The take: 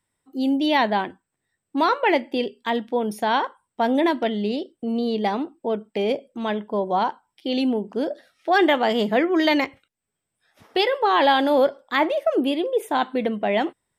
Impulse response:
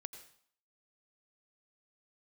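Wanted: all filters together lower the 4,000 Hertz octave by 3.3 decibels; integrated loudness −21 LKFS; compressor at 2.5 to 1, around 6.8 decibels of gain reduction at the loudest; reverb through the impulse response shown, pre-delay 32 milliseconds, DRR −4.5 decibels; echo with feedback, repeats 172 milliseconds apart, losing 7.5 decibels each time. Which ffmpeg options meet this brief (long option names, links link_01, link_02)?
-filter_complex "[0:a]equalizer=frequency=4000:width_type=o:gain=-4.5,acompressor=threshold=-25dB:ratio=2.5,aecho=1:1:172|344|516|688|860:0.422|0.177|0.0744|0.0312|0.0131,asplit=2[link_01][link_02];[1:a]atrim=start_sample=2205,adelay=32[link_03];[link_02][link_03]afir=irnorm=-1:irlink=0,volume=8.5dB[link_04];[link_01][link_04]amix=inputs=2:normalize=0,volume=0.5dB"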